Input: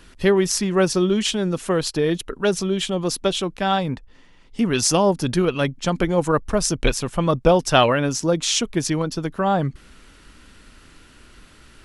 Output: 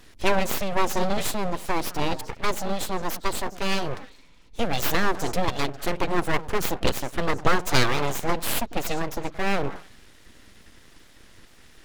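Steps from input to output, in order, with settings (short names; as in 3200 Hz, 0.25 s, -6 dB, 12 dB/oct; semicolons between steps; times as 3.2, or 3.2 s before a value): delay with a stepping band-pass 0.101 s, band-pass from 260 Hz, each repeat 1.4 oct, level -11.5 dB; formant shift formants +3 st; full-wave rectifier; gain -2 dB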